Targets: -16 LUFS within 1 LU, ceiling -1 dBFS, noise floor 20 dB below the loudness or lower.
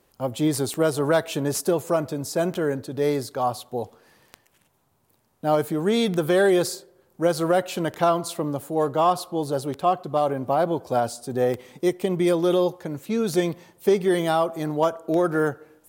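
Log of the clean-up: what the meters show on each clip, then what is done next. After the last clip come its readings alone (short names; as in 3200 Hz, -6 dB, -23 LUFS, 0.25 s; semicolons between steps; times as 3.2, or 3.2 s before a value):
clicks 9; loudness -24.0 LUFS; peak -8.0 dBFS; loudness target -16.0 LUFS
-> de-click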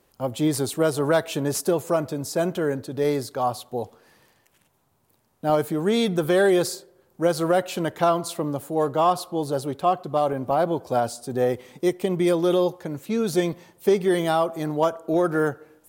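clicks 0; loudness -24.0 LUFS; peak -8.0 dBFS; loudness target -16.0 LUFS
-> gain +8 dB; limiter -1 dBFS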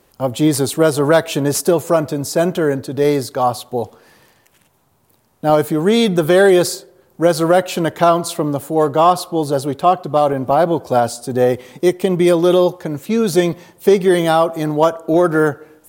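loudness -16.0 LUFS; peak -1.0 dBFS; noise floor -57 dBFS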